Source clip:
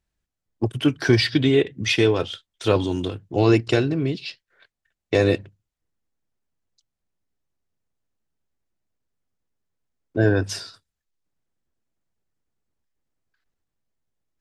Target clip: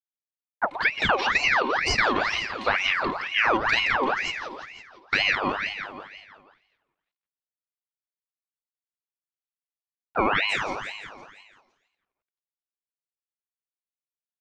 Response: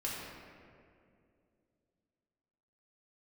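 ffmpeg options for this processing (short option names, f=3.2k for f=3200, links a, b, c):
-filter_complex "[0:a]asplit=2[a][b];[b]equalizer=f=280:t=o:w=2.5:g=-7[c];[1:a]atrim=start_sample=2205,adelay=86[d];[c][d]afir=irnorm=-1:irlink=0,volume=-19dB[e];[a][e]amix=inputs=2:normalize=0,aeval=exprs='val(0)*gte(abs(val(0)),0.00596)':c=same,lowpass=2.9k,equalizer=f=1.6k:t=o:w=0.33:g=7.5,aecho=1:1:2.8:0.62,aecho=1:1:170|340|510|680|850|1020|1190:0.447|0.246|0.135|0.0743|0.0409|0.0225|0.0124,acompressor=threshold=-16dB:ratio=5,aeval=exprs='val(0)*sin(2*PI*1600*n/s+1600*0.6/2.1*sin(2*PI*2.1*n/s))':c=same"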